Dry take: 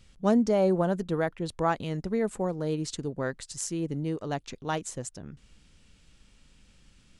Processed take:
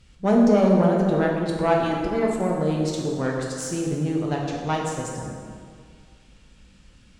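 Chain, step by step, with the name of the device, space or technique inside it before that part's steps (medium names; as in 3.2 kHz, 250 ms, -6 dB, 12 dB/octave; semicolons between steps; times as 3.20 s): 1.76–2.40 s: comb 3 ms, depth 76%; tube preamp driven hard (valve stage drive 17 dB, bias 0.5; treble shelf 5.4 kHz -5 dB); plate-style reverb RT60 2.1 s, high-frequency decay 0.65×, DRR -2 dB; trim +4.5 dB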